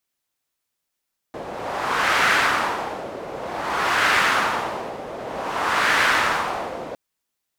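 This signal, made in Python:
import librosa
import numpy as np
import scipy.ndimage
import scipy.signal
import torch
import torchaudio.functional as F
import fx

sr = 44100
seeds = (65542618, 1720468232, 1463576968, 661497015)

y = fx.wind(sr, seeds[0], length_s=5.61, low_hz=550.0, high_hz=1600.0, q=1.6, gusts=3, swing_db=15.0)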